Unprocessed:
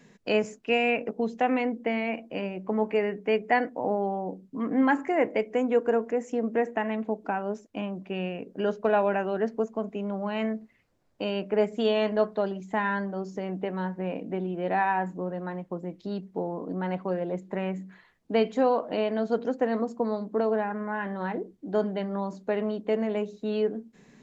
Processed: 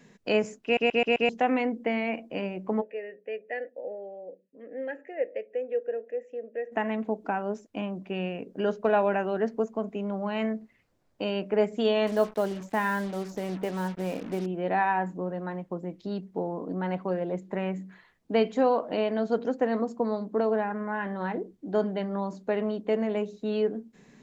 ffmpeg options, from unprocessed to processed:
-filter_complex "[0:a]asplit=3[s0][s1][s2];[s0]afade=t=out:st=2.8:d=0.02[s3];[s1]asplit=3[s4][s5][s6];[s4]bandpass=f=530:t=q:w=8,volume=1[s7];[s5]bandpass=f=1840:t=q:w=8,volume=0.501[s8];[s6]bandpass=f=2480:t=q:w=8,volume=0.355[s9];[s7][s8][s9]amix=inputs=3:normalize=0,afade=t=in:st=2.8:d=0.02,afade=t=out:st=6.71:d=0.02[s10];[s2]afade=t=in:st=6.71:d=0.02[s11];[s3][s10][s11]amix=inputs=3:normalize=0,asettb=1/sr,asplit=3[s12][s13][s14];[s12]atrim=end=12.074[s15];[s13]atrim=start=12.07:end=14.46,asetpts=PTS-STARTPTS,afade=t=in:d=0.004:c=qsin,afade=t=out:st=2.386:d=0.004:c=qsin,acrusher=bits=6:mix=0:aa=0.5[s16];[s14]atrim=start=14.456[s17];[s15][s16]acrossfade=d=0.004:c1=hsin:c2=qsin[s18];[s18][s17]acrossfade=d=0.004:c1=qsin:c2=hsin,asplit=6[s19][s20][s21][s22][s23][s24];[s19]atrim=end=0.772[s25];[s20]atrim=start=0.638:end=0.772[s26];[s21]atrim=start=0.638:end=0.772[s27];[s22]atrim=start=0.638:end=0.772[s28];[s23]atrim=start=0.638:end=0.772[s29];[s24]atrim=start=1.288[s30];[s25][s26]acrossfade=d=0.004:c1=hsin:c2=hsin[s31];[s31][s27]acrossfade=d=0.004:c1=hsin:c2=hsin[s32];[s32][s28]acrossfade=d=0.004:c1=hsin:c2=hsin[s33];[s33][s29]acrossfade=d=0.004:c1=hsin:c2=hsin[s34];[s34][s30]acrossfade=d=0.004:c1=hsin:c2=hsin"

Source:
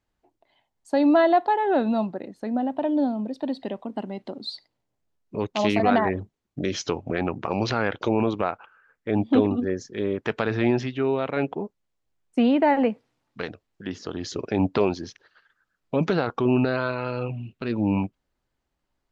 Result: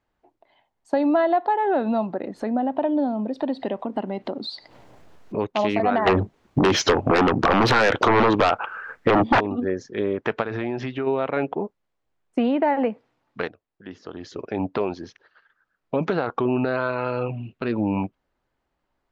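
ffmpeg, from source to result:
-filter_complex "[0:a]asettb=1/sr,asplit=3[s0][s1][s2];[s0]atrim=end=1.384[s3];[s1]atrim=start=1.38:end=5.43,asetpts=PTS-STARTPTS,afade=t=in:d=0.004:c=qsin,afade=t=out:st=4.046:d=0.004:c=qsin,acompressor=mode=upward:threshold=0.0447:ratio=2.5:attack=3.2:release=140:knee=2.83:detection=peak[s4];[s2]atrim=start=5.426[s5];[s3][s4]acrossfade=d=0.004:c1=hsin:c2=qsin[s6];[s6][s5]acrossfade=d=0.004:c1=qsin:c2=hsin,asplit=3[s7][s8][s9];[s7]afade=t=out:st=6.06:d=0.02[s10];[s8]aeval=exprs='0.447*sin(PI/2*5.62*val(0)/0.447)':c=same,afade=t=in:st=6.06:d=0.02,afade=t=out:st=9.39:d=0.02[s11];[s9]afade=t=in:st=9.39:d=0.02[s12];[s10][s11][s12]amix=inputs=3:normalize=0,asplit=3[s13][s14][s15];[s13]afade=t=out:st=10.42:d=0.02[s16];[s14]acompressor=threshold=0.0501:ratio=5:attack=3.2:release=140:knee=1:detection=peak,afade=t=in:st=10.42:d=0.02,afade=t=out:st=11.06:d=0.02[s17];[s15]afade=t=in:st=11.06:d=0.02[s18];[s16][s17][s18]amix=inputs=3:normalize=0,asplit=2[s19][s20];[s19]atrim=end=13.48,asetpts=PTS-STARTPTS,afade=t=out:st=13.476:d=0.004:c=hsin:silence=0.237137[s21];[s20]atrim=start=13.48,asetpts=PTS-STARTPTS,afade=t=in:d=3.35:silence=0.237137[s22];[s21][s22]concat=n=2:v=0:a=1,lowpass=f=1400:p=1,lowshelf=f=360:g=-9,acompressor=threshold=0.0355:ratio=2.5,volume=2.82"

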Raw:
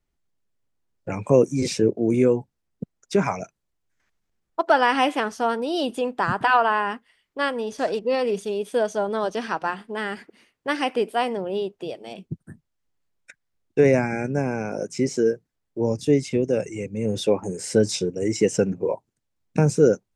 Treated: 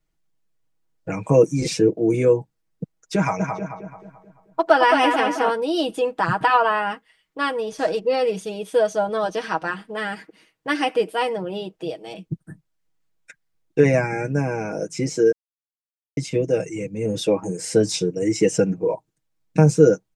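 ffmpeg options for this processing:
-filter_complex "[0:a]asplit=3[s0][s1][s2];[s0]afade=t=out:st=3.39:d=0.02[s3];[s1]asplit=2[s4][s5];[s5]adelay=218,lowpass=f=2500:p=1,volume=0.631,asplit=2[s6][s7];[s7]adelay=218,lowpass=f=2500:p=1,volume=0.46,asplit=2[s8][s9];[s9]adelay=218,lowpass=f=2500:p=1,volume=0.46,asplit=2[s10][s11];[s11]adelay=218,lowpass=f=2500:p=1,volume=0.46,asplit=2[s12][s13];[s13]adelay=218,lowpass=f=2500:p=1,volume=0.46,asplit=2[s14][s15];[s15]adelay=218,lowpass=f=2500:p=1,volume=0.46[s16];[s4][s6][s8][s10][s12][s14][s16]amix=inputs=7:normalize=0,afade=t=in:st=3.39:d=0.02,afade=t=out:st=5.49:d=0.02[s17];[s2]afade=t=in:st=5.49:d=0.02[s18];[s3][s17][s18]amix=inputs=3:normalize=0,asplit=3[s19][s20][s21];[s19]atrim=end=15.32,asetpts=PTS-STARTPTS,afade=t=out:st=15.316:d=0.004:c=hsin[s22];[s20]atrim=start=15.32:end=16.17,asetpts=PTS-STARTPTS,volume=0[s23];[s21]atrim=start=16.17,asetpts=PTS-STARTPTS,afade=t=in:d=0.004:c=hsin[s24];[s22][s23][s24]concat=n=3:v=0:a=1,aecho=1:1:6.3:0.76"

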